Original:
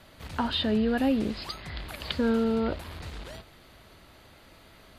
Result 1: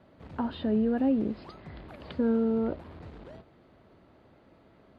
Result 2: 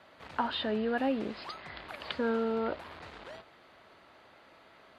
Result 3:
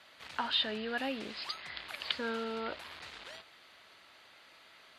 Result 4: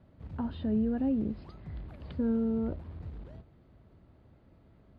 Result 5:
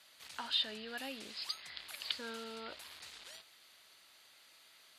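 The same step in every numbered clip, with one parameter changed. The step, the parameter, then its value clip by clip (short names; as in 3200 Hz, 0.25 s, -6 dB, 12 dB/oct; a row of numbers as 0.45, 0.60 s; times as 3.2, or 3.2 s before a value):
band-pass, frequency: 290, 1000, 2600, 110, 7300 Hz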